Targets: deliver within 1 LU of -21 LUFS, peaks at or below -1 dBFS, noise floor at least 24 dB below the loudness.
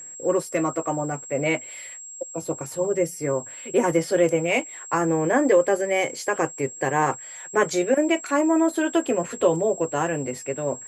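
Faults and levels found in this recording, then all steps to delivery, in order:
steady tone 7600 Hz; tone level -37 dBFS; loudness -23.5 LUFS; peak -7.0 dBFS; loudness target -21.0 LUFS
-> notch 7600 Hz, Q 30; gain +2.5 dB

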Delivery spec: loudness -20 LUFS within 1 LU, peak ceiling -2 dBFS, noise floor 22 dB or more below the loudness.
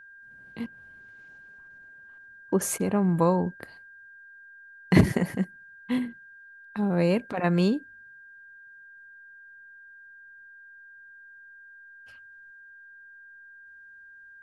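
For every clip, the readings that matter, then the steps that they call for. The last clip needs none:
steady tone 1600 Hz; tone level -47 dBFS; loudness -26.5 LUFS; peak -5.5 dBFS; loudness target -20.0 LUFS
-> notch 1600 Hz, Q 30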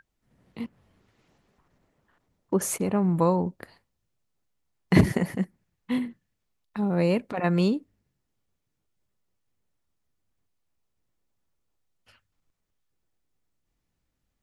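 steady tone none; loudness -26.0 LUFS; peak -5.5 dBFS; loudness target -20.0 LUFS
-> gain +6 dB; limiter -2 dBFS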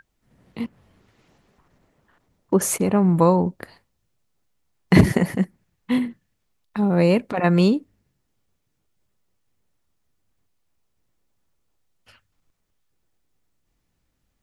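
loudness -20.0 LUFS; peak -2.0 dBFS; noise floor -73 dBFS

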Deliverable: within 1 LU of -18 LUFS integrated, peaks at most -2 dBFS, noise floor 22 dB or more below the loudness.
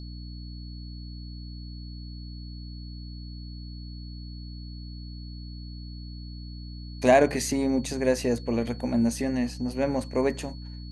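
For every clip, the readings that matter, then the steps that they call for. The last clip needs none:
hum 60 Hz; harmonics up to 300 Hz; hum level -37 dBFS; steady tone 4400 Hz; tone level -49 dBFS; loudness -26.0 LUFS; peak -8.0 dBFS; loudness target -18.0 LUFS
-> de-hum 60 Hz, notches 5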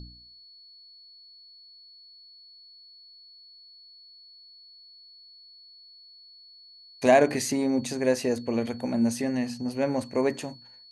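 hum none; steady tone 4400 Hz; tone level -49 dBFS
-> notch 4400 Hz, Q 30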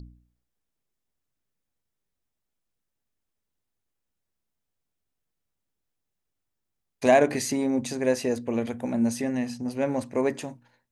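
steady tone none; loudness -26.0 LUFS; peak -8.0 dBFS; loudness target -18.0 LUFS
-> gain +8 dB; limiter -2 dBFS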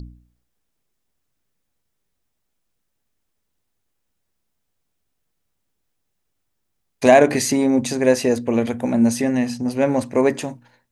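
loudness -18.5 LUFS; peak -2.0 dBFS; noise floor -74 dBFS

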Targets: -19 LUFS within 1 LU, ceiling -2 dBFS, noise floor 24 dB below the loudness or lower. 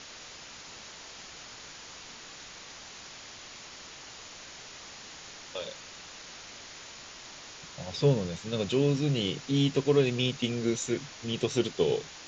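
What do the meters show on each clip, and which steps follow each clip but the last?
noise floor -47 dBFS; noise floor target -53 dBFS; loudness -29.0 LUFS; peak -12.0 dBFS; loudness target -19.0 LUFS
-> denoiser 6 dB, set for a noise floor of -47 dBFS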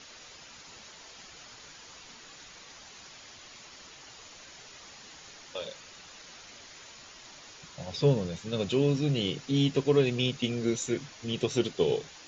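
noise floor -50 dBFS; noise floor target -53 dBFS
-> denoiser 6 dB, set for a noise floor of -50 dBFS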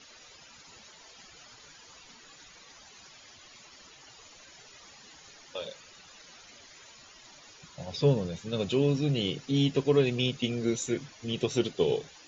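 noise floor -54 dBFS; loudness -29.0 LUFS; peak -12.5 dBFS; loudness target -19.0 LUFS
-> gain +10 dB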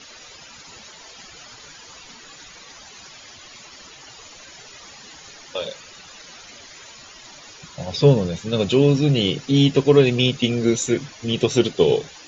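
loudness -19.0 LUFS; peak -2.5 dBFS; noise floor -44 dBFS

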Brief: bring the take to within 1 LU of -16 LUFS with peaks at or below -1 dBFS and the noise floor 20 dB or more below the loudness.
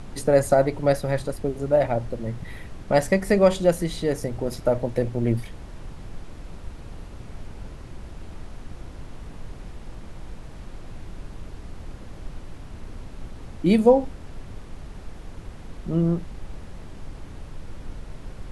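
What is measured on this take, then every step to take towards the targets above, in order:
noise floor -41 dBFS; noise floor target -43 dBFS; loudness -23.0 LUFS; peak -4.5 dBFS; loudness target -16.0 LUFS
-> noise print and reduce 6 dB; gain +7 dB; limiter -1 dBFS

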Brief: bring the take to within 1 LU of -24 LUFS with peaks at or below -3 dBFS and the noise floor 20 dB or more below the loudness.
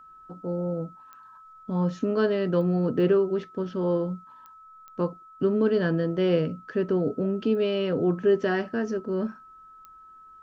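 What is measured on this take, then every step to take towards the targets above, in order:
clicks 7; steady tone 1300 Hz; tone level -47 dBFS; loudness -26.0 LUFS; peak -11.5 dBFS; loudness target -24.0 LUFS
-> de-click; notch 1300 Hz, Q 30; gain +2 dB

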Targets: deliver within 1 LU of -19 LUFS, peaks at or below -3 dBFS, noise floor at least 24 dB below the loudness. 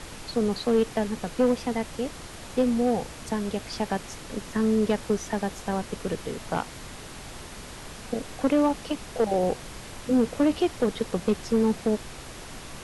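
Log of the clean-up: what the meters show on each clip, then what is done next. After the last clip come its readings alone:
clipped 0.8%; flat tops at -15.5 dBFS; noise floor -42 dBFS; noise floor target -51 dBFS; loudness -27.0 LUFS; peak -15.5 dBFS; loudness target -19.0 LUFS
-> clip repair -15.5 dBFS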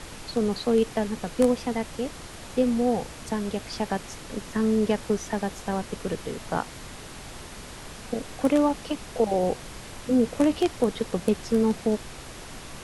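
clipped 0.0%; noise floor -42 dBFS; noise floor target -51 dBFS
-> noise print and reduce 9 dB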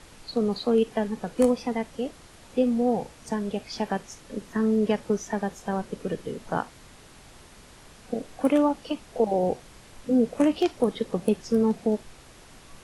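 noise floor -50 dBFS; noise floor target -51 dBFS
-> noise print and reduce 6 dB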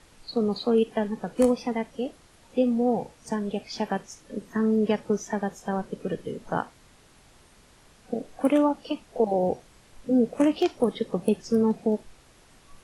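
noise floor -56 dBFS; loudness -27.0 LUFS; peak -8.0 dBFS; loudness target -19.0 LUFS
-> gain +8 dB; limiter -3 dBFS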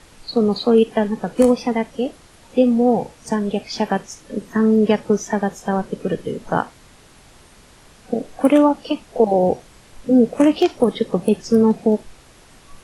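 loudness -19.0 LUFS; peak -3.0 dBFS; noise floor -48 dBFS

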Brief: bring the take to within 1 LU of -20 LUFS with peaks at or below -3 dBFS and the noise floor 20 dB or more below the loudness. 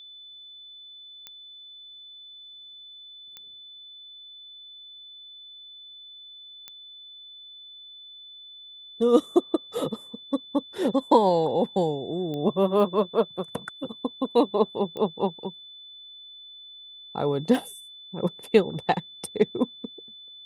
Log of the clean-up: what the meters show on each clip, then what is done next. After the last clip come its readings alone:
clicks 7; steady tone 3500 Hz; tone level -43 dBFS; loudness -26.0 LUFS; peak -6.0 dBFS; loudness target -20.0 LUFS
-> de-click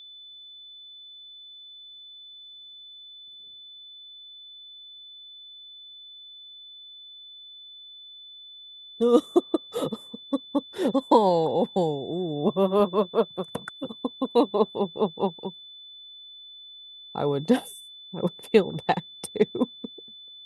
clicks 0; steady tone 3500 Hz; tone level -43 dBFS
-> notch 3500 Hz, Q 30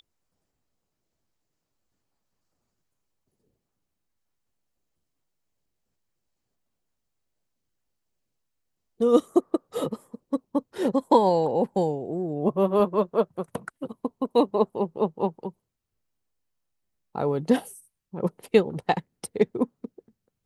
steady tone none; loudness -25.5 LUFS; peak -6.0 dBFS; loudness target -20.0 LUFS
-> gain +5.5 dB; limiter -3 dBFS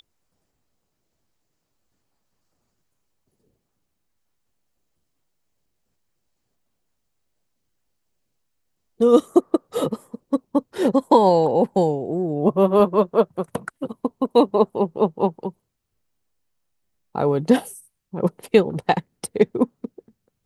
loudness -20.5 LUFS; peak -3.0 dBFS; noise floor -76 dBFS

